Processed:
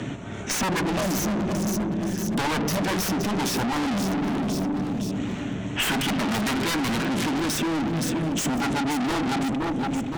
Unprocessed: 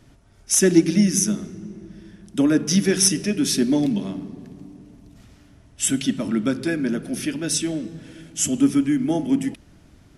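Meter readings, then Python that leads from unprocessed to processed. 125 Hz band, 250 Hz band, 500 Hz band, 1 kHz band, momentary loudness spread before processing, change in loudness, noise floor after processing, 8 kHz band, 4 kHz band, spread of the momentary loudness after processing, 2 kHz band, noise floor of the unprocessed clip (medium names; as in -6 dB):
0.0 dB, -3.5 dB, -3.0 dB, +12.5 dB, 18 LU, -4.5 dB, -31 dBFS, -8.5 dB, -0.5 dB, 3 LU, +4.0 dB, -53 dBFS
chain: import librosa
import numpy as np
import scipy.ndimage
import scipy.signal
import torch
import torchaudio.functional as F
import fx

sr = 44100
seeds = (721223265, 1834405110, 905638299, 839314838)

p1 = fx.wiener(x, sr, points=9)
p2 = fx.spec_box(p1, sr, start_s=5.77, length_s=1.32, low_hz=730.0, high_hz=3400.0, gain_db=12)
p3 = scipy.signal.sosfilt(scipy.signal.butter(4, 8800.0, 'lowpass', fs=sr, output='sos'), p2)
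p4 = fx.rider(p3, sr, range_db=10, speed_s=0.5)
p5 = p3 + (p4 * librosa.db_to_amplitude(-2.5))
p6 = scipy.signal.sosfilt(scipy.signal.butter(2, 160.0, 'highpass', fs=sr, output='sos'), p5)
p7 = 10.0 ** (-16.5 / 20.0) * (np.abs((p6 / 10.0 ** (-16.5 / 20.0) + 3.0) % 4.0 - 2.0) - 1.0)
p8 = fx.low_shelf(p7, sr, hz=280.0, db=7.5)
p9 = p8 + fx.echo_feedback(p8, sr, ms=517, feedback_pct=31, wet_db=-14, dry=0)
p10 = fx.tube_stage(p9, sr, drive_db=33.0, bias=0.4)
p11 = fx.band_squash(p10, sr, depth_pct=70)
y = p11 * librosa.db_to_amplitude(9.0)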